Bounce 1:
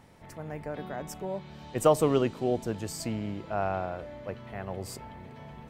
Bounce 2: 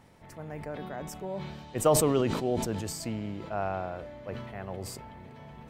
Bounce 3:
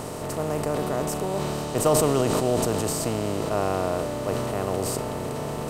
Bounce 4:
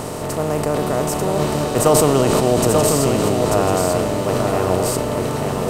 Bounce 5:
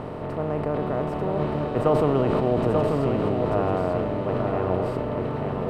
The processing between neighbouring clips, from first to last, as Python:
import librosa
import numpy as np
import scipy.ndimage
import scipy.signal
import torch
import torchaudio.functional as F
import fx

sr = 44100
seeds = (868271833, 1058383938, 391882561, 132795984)

y1 = fx.sustainer(x, sr, db_per_s=42.0)
y1 = F.gain(torch.from_numpy(y1), -2.0).numpy()
y2 = fx.bin_compress(y1, sr, power=0.4)
y3 = y2 + 10.0 ** (-4.0 / 20.0) * np.pad(y2, (int(889 * sr / 1000.0), 0))[:len(y2)]
y3 = F.gain(torch.from_numpy(y3), 6.5).numpy()
y4 = fx.air_absorb(y3, sr, metres=460.0)
y4 = F.gain(torch.from_numpy(y4), -5.0).numpy()